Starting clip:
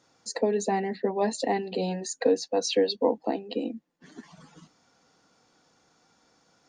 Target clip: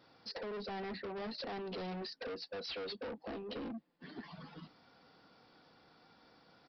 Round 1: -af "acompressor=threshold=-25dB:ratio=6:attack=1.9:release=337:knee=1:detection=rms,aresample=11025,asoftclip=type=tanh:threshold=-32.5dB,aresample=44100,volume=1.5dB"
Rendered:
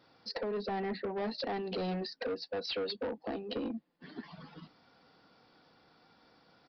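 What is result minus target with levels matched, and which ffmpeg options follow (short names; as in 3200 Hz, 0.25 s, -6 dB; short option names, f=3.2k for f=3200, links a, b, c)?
soft clip: distortion -5 dB
-af "acompressor=threshold=-25dB:ratio=6:attack=1.9:release=337:knee=1:detection=rms,aresample=11025,asoftclip=type=tanh:threshold=-41.5dB,aresample=44100,volume=1.5dB"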